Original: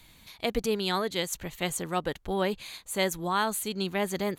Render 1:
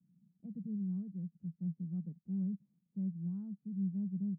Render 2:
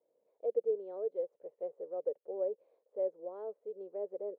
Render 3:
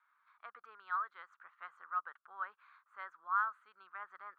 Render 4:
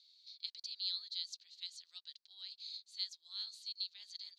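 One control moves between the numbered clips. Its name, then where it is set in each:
Butterworth band-pass, frequency: 180, 500, 1300, 4500 Hz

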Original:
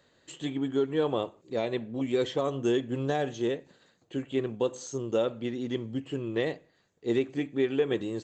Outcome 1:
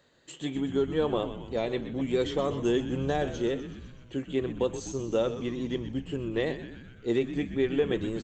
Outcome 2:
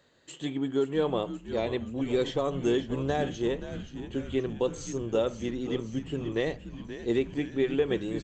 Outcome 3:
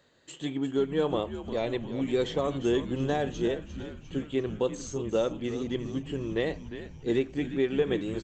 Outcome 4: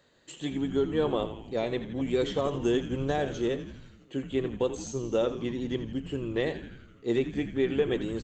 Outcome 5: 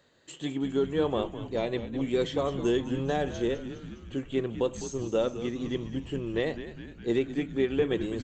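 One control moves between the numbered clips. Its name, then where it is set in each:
frequency-shifting echo, time: 125, 527, 351, 83, 205 ms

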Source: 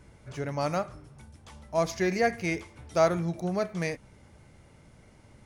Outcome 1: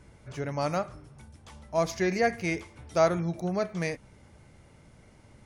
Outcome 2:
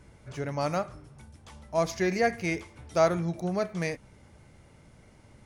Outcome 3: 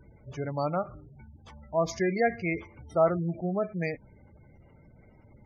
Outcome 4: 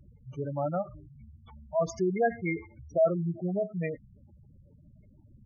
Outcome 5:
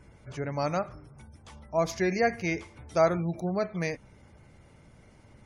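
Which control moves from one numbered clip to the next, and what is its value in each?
spectral gate, under each frame's peak: -50, -60, -20, -10, -35 dB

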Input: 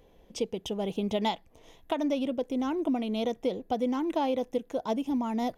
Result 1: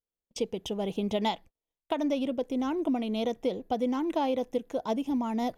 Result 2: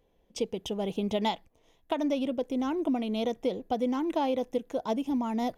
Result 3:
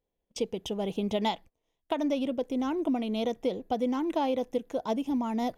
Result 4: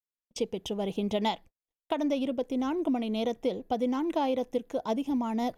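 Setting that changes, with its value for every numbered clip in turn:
gate, range: -41, -10, -26, -55 dB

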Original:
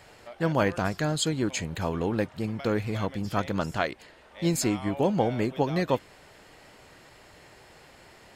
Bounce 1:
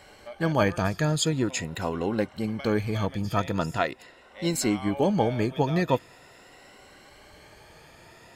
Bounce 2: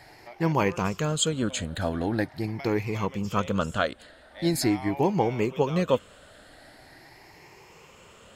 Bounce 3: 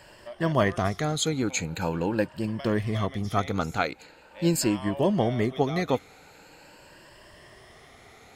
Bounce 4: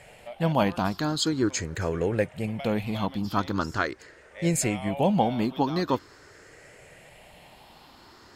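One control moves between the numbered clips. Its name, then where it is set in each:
moving spectral ripple, ripples per octave: 2.1, 0.77, 1.3, 0.5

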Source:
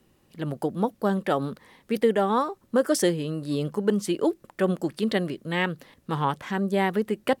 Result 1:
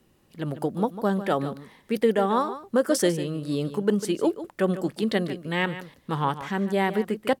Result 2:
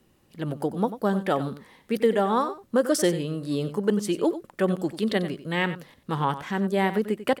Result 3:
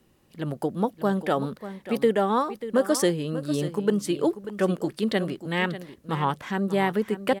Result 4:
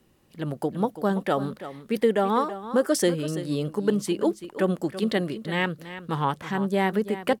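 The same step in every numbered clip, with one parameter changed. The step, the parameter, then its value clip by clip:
echo, time: 148, 93, 590, 333 ms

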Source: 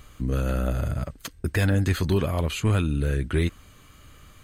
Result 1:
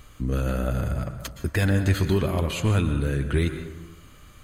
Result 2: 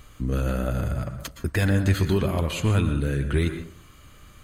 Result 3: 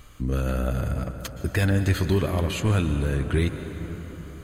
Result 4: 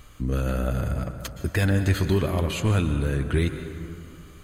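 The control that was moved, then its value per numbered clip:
plate-style reverb, RT60: 1.1, 0.51, 5.2, 2.5 s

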